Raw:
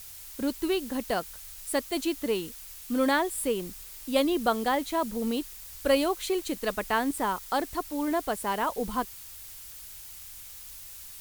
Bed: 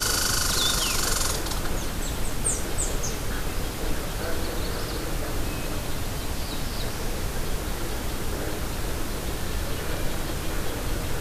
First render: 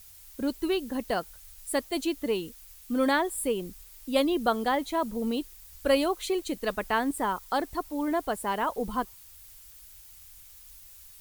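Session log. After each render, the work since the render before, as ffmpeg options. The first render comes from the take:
ffmpeg -i in.wav -af "afftdn=noise_reduction=8:noise_floor=-45" out.wav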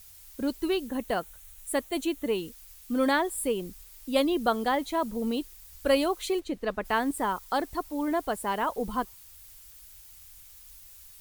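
ffmpeg -i in.wav -filter_complex "[0:a]asettb=1/sr,asplit=3[link_01][link_02][link_03];[link_01]atrim=end=0.874[link_04];[link_02]atrim=start=0.87:end=2.38,asetpts=PTS-STARTPTS,afade=type=in:duration=0.004:curve=qsin,afade=type=out:start_time=1.506:duration=0.004:curve=qsin,equalizer=frequency=4900:width=3.9:gain=-8.5[link_05];[link_03]atrim=start=2.376[link_06];[link_04][link_05]acrossfade=duration=0.004:curve1=hsin:curve2=qsin[link_07];[link_07][link_06]acrossfade=duration=0.004:curve1=qsin:curve2=hsin,asplit=3[link_08][link_09][link_10];[link_08]afade=type=out:start_time=6.39:duration=0.02[link_11];[link_09]lowpass=frequency=2100:poles=1,afade=type=in:start_time=6.39:duration=0.02,afade=type=out:start_time=6.84:duration=0.02[link_12];[link_10]afade=type=in:start_time=6.84:duration=0.02[link_13];[link_11][link_12][link_13]amix=inputs=3:normalize=0" out.wav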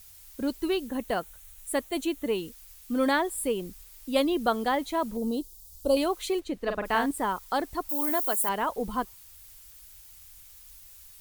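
ffmpeg -i in.wav -filter_complex "[0:a]asettb=1/sr,asplit=3[link_01][link_02][link_03];[link_01]atrim=end=5.174[link_04];[link_02]atrim=start=5.17:end=5.97,asetpts=PTS-STARTPTS,afade=type=in:duration=0.004:curve=qsin,afade=type=out:start_time=0.796:duration=0.004:curve=qsin,asuperstop=centerf=1900:order=4:qfactor=0.61[link_05];[link_03]atrim=start=5.966[link_06];[link_04][link_05]acrossfade=duration=0.004:curve1=hsin:curve2=qsin[link_07];[link_07][link_06]acrossfade=duration=0.004:curve1=qsin:curve2=hsin,asettb=1/sr,asplit=3[link_08][link_09][link_10];[link_08]atrim=end=6.624[link_11];[link_09]atrim=start=6.62:end=7.06,asetpts=PTS-STARTPTS,afade=type=in:duration=0.004:curve=qsin,afade=type=out:start_time=0.436:duration=0.004:curve=qsin,asplit=2[link_12][link_13];[link_13]adelay=44,volume=-5.5dB[link_14];[link_12][link_14]amix=inputs=2:normalize=0,atrim=end_sample=19404[link_15];[link_10]atrim=start=7.056[link_16];[link_11][link_15]acrossfade=duration=0.004:curve1=hsin:curve2=qsin[link_17];[link_17][link_16]acrossfade=duration=0.004:curve1=qsin:curve2=hsin,asettb=1/sr,asplit=3[link_18][link_19][link_20];[link_18]atrim=end=7.894[link_21];[link_19]atrim=start=7.89:end=8.49,asetpts=PTS-STARTPTS,afade=type=in:duration=0.004:curve=qsin,afade=type=out:start_time=0.596:duration=0.004:curve=qsin,aemphasis=mode=production:type=bsi[link_22];[link_20]atrim=start=8.486[link_23];[link_21][link_22]acrossfade=duration=0.004:curve1=hsin:curve2=qsin[link_24];[link_24][link_23]acrossfade=duration=0.004:curve1=qsin:curve2=hsin" out.wav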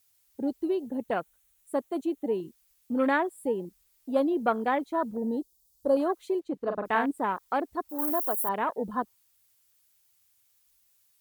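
ffmpeg -i in.wav -af "afwtdn=0.02,highpass=140" out.wav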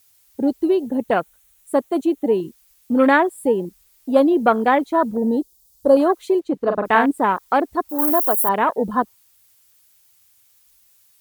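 ffmpeg -i in.wav -af "volume=10.5dB,alimiter=limit=-2dB:level=0:latency=1" out.wav

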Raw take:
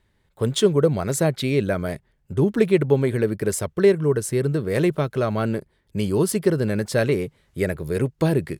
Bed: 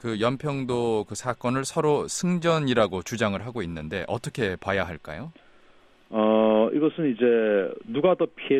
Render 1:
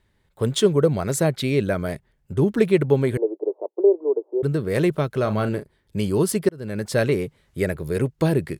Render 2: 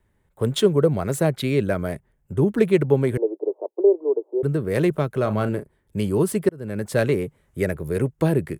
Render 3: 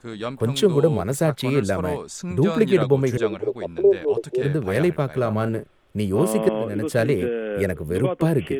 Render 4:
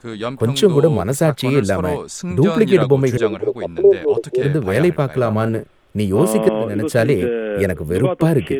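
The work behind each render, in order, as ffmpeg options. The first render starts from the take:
ffmpeg -i in.wav -filter_complex "[0:a]asettb=1/sr,asplit=3[link_01][link_02][link_03];[link_01]atrim=end=3.174[link_04];[link_02]atrim=start=3.17:end=4.43,asetpts=PTS-STARTPTS,afade=type=in:duration=0.004:curve=qsin,afade=type=out:start_time=1.256:duration=0.004:curve=qsin,asuperpass=centerf=540:order=12:qfactor=0.89[link_05];[link_03]atrim=start=4.426[link_06];[link_04][link_05]acrossfade=duration=0.004:curve1=hsin:curve2=qsin[link_07];[link_07][link_06]acrossfade=duration=0.004:curve1=qsin:curve2=hsin,asettb=1/sr,asplit=3[link_08][link_09][link_10];[link_08]atrim=end=5.214[link_11];[link_09]atrim=start=5.21:end=5.99,asetpts=PTS-STARTPTS,afade=type=in:duration=0.004:curve=qsin,afade=type=out:start_time=0.776:duration=0.004:curve=qsin,asplit=2[link_12][link_13];[link_13]adelay=38,volume=-10.5dB[link_14];[link_12][link_14]amix=inputs=2:normalize=0,atrim=end_sample=34398[link_15];[link_10]atrim=start=5.986[link_16];[link_11][link_15]acrossfade=duration=0.004:curve1=hsin:curve2=qsin[link_17];[link_17][link_16]acrossfade=duration=0.004:curve1=qsin:curve2=hsin,asplit=2[link_18][link_19];[link_18]atrim=end=6.49,asetpts=PTS-STARTPTS,afade=type=out:start_time=6.486:duration=0.004:curve=hsin[link_20];[link_19]atrim=start=6.49,asetpts=PTS-STARTPTS,afade=type=in:duration=0.44[link_21];[link_20][link_21]concat=n=2:v=0:a=1" out.wav
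ffmpeg -i in.wav -filter_complex "[0:a]acrossover=split=260|1200|5700[link_01][link_02][link_03][link_04];[link_03]adynamicsmooth=sensitivity=4.5:basefreq=2800[link_05];[link_04]asoftclip=type=hard:threshold=-28dB[link_06];[link_01][link_02][link_05][link_06]amix=inputs=4:normalize=0" out.wav
ffmpeg -i in.wav -i bed.wav -filter_complex "[1:a]volume=-5.5dB[link_01];[0:a][link_01]amix=inputs=2:normalize=0" out.wav
ffmpeg -i in.wav -af "volume=5dB,alimiter=limit=-1dB:level=0:latency=1" out.wav

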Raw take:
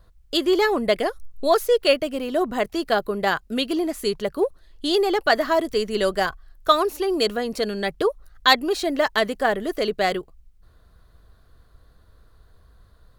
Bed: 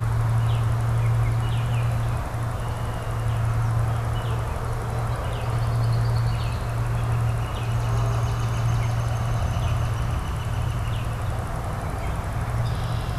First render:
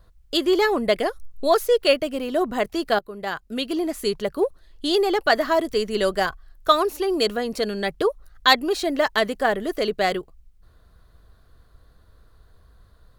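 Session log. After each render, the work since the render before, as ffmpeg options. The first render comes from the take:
ffmpeg -i in.wav -filter_complex "[0:a]asplit=2[link_01][link_02];[link_01]atrim=end=2.99,asetpts=PTS-STARTPTS,afade=type=out:start_time=2.986:duration=0.004:curve=hsin:silence=0.199526[link_03];[link_02]atrim=start=2.99,asetpts=PTS-STARTPTS,afade=type=in:duration=0.94:silence=0.199526[link_04];[link_03][link_04]concat=n=2:v=0:a=1" out.wav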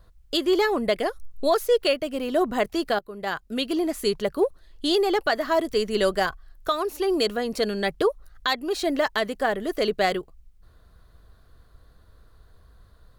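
ffmpeg -i in.wav -af "alimiter=limit=-11.5dB:level=0:latency=1:release=392" out.wav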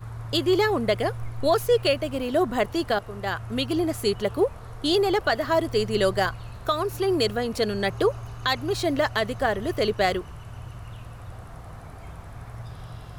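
ffmpeg -i in.wav -i bed.wav -filter_complex "[1:a]volume=-13.5dB[link_01];[0:a][link_01]amix=inputs=2:normalize=0" out.wav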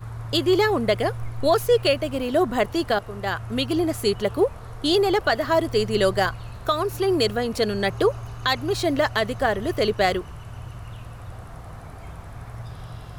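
ffmpeg -i in.wav -af "volume=2dB" out.wav

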